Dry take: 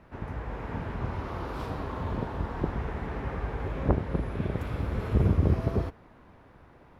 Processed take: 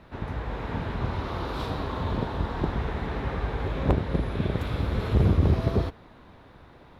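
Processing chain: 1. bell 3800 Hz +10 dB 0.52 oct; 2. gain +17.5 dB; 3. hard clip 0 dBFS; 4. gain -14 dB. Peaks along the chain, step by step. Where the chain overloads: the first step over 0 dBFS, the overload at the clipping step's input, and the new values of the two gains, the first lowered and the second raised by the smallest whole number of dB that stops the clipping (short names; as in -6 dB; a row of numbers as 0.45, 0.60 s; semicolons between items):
-9.5, +8.0, 0.0, -14.0 dBFS; step 2, 8.0 dB; step 2 +9.5 dB, step 4 -6 dB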